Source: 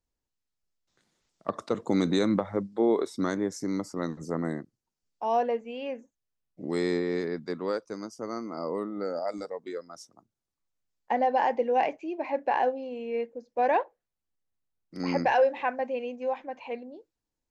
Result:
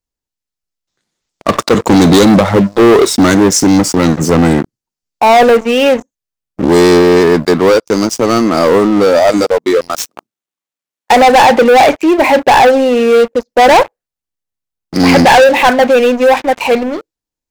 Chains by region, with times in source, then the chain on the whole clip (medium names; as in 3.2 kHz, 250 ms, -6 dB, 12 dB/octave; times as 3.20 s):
9.90–11.42 s: median filter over 9 samples + high-pass 220 Hz + treble shelf 2.7 kHz +8.5 dB
whole clip: treble shelf 2.5 kHz +4.5 dB; waveshaping leveller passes 5; trim +9 dB